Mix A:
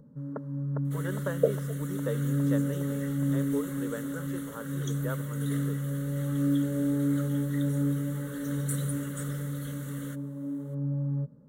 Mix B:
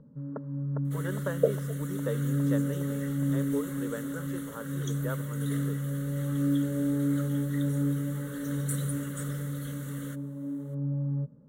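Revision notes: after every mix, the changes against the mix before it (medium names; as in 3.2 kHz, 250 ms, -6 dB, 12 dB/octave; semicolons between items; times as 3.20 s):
first sound: add distance through air 360 m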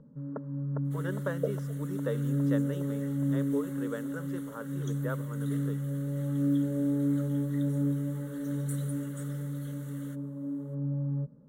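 second sound -7.5 dB; master: add peaking EQ 99 Hz -8 dB 0.44 oct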